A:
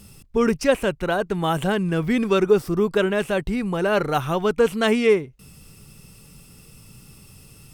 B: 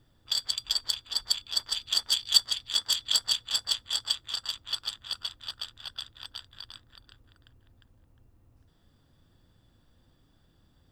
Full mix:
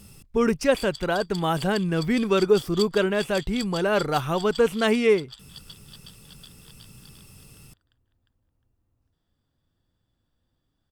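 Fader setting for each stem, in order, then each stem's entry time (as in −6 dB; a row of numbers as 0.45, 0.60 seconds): −2.0, −11.0 decibels; 0.00, 0.45 seconds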